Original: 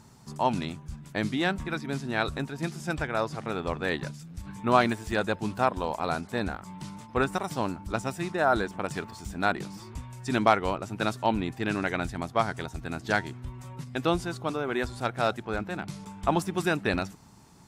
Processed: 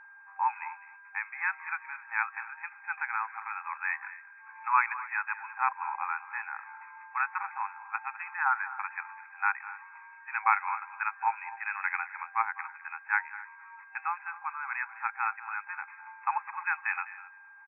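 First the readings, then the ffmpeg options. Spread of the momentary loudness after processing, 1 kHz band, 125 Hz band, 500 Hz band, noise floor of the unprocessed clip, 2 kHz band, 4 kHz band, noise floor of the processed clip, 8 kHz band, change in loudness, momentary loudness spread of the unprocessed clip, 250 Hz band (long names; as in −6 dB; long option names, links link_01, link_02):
14 LU, −1.0 dB, below −40 dB, below −40 dB, −49 dBFS, +1.5 dB, below −40 dB, −53 dBFS, below −35 dB, −3.5 dB, 13 LU, below −40 dB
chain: -filter_complex "[0:a]asplit=2[link_01][link_02];[link_02]adelay=256.6,volume=-18dB,highshelf=frequency=4000:gain=-5.77[link_03];[link_01][link_03]amix=inputs=2:normalize=0,aeval=exprs='val(0)+0.00316*sin(2*PI*1600*n/s)':channel_layout=same,afftfilt=real='re*between(b*sr/4096,780,2600)':imag='im*between(b*sr/4096,780,2600)':win_size=4096:overlap=0.75,asplit=2[link_04][link_05];[link_05]aecho=0:1:204:0.158[link_06];[link_04][link_06]amix=inputs=2:normalize=0,adynamicequalizer=threshold=0.01:dfrequency=1900:dqfactor=0.7:tfrequency=1900:tqfactor=0.7:attack=5:release=100:ratio=0.375:range=1.5:mode=boostabove:tftype=highshelf"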